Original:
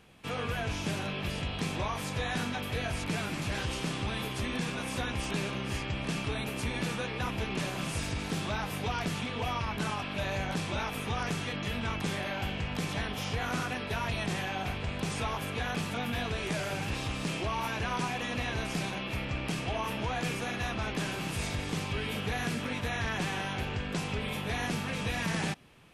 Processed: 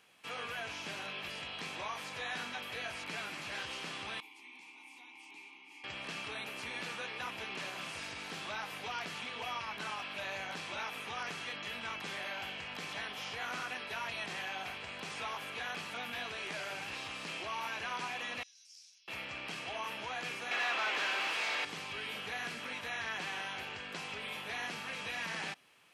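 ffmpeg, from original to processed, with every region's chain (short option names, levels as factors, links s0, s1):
-filter_complex "[0:a]asettb=1/sr,asplit=3[s0][s1][s2];[s0]atrim=end=4.204[s3];[s1]atrim=start=4.2:end=5.84,asetpts=PTS-STARTPTS,afade=t=in:d=0.004:c=qsin,afade=t=out:st=1.636:d=0.004:c=qsin,asplit=3[s4][s5][s6];[s4]bandpass=f=300:t=q:w=8,volume=1[s7];[s5]bandpass=f=870:t=q:w=8,volume=0.501[s8];[s6]bandpass=f=2240:t=q:w=8,volume=0.355[s9];[s7][s8][s9]amix=inputs=3:normalize=0,aemphasis=mode=production:type=riaa,bandreject=f=1300:w=16[s10];[s2]atrim=start=5.836[s11];[s3][s10]acrossfade=d=0.004:c1=hsin:c2=qsin[s12];[s12][s11]acrossfade=d=0.004:c1=qsin:c2=hsin,asettb=1/sr,asplit=3[s13][s14][s15];[s13]atrim=end=18.434[s16];[s14]atrim=start=18.43:end=19.08,asetpts=PTS-STARTPTS,afade=t=in:d=0.004:c=qsin,afade=t=out:st=0.646:d=0.004:c=qsin,bandpass=f=5400:t=q:w=6.1,aderivative[s17];[s15]atrim=start=19.076[s18];[s16][s17]acrossfade=d=0.004:c1=hsin:c2=qsin[s19];[s19][s18]acrossfade=d=0.004:c1=qsin:c2=hsin,asettb=1/sr,asplit=3[s20][s21][s22];[s20]atrim=end=20.514[s23];[s21]atrim=start=20.51:end=21.65,asetpts=PTS-STARTPTS,afade=t=in:d=0.004:c=qsin,afade=t=out:st=1.136:d=0.004:c=qsin,highpass=290,asplit=2[s24][s25];[s25]highpass=f=720:p=1,volume=12.6,asoftclip=type=tanh:threshold=0.0891[s26];[s24][s26]amix=inputs=2:normalize=0,lowpass=f=3300:p=1,volume=0.501[s27];[s22]atrim=start=21.646[s28];[s23][s27]acrossfade=d=0.004:c1=hsin:c2=qsin[s29];[s29][s28]acrossfade=d=0.004:c1=qsin:c2=hsin,highpass=f=1200:p=1,acrossover=split=5000[s30][s31];[s31]acompressor=threshold=0.00178:ratio=4:attack=1:release=60[s32];[s30][s32]amix=inputs=2:normalize=0,bandreject=f=3600:w=21,volume=0.841"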